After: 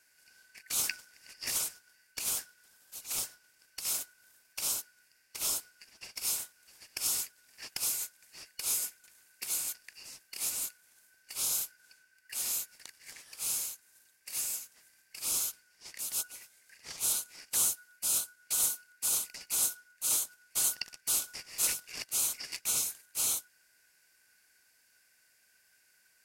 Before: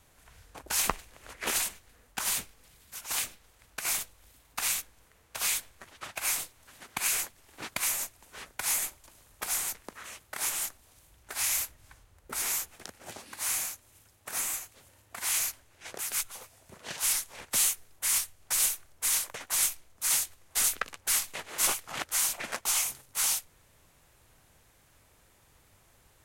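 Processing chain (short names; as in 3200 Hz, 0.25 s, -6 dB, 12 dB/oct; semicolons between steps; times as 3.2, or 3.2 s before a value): four-band scrambler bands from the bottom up 3142; tone controls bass -2 dB, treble +6 dB; gain -8 dB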